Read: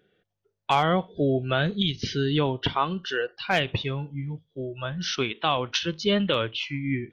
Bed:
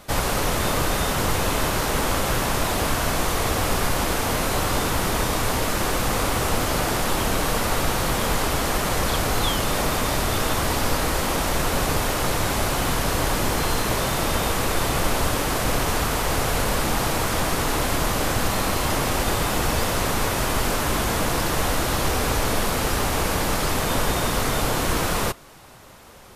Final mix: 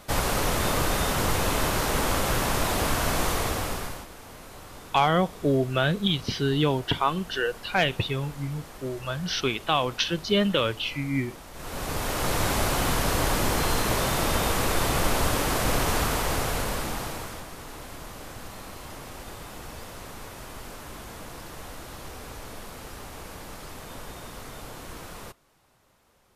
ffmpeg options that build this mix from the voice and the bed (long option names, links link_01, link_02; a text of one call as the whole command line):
ffmpeg -i stem1.wav -i stem2.wav -filter_complex "[0:a]adelay=4250,volume=0.5dB[link_01];[1:a]volume=17dB,afade=type=out:start_time=3.28:duration=0.79:silence=0.112202,afade=type=in:start_time=11.53:duration=0.89:silence=0.105925,afade=type=out:start_time=16:duration=1.46:silence=0.158489[link_02];[link_01][link_02]amix=inputs=2:normalize=0" out.wav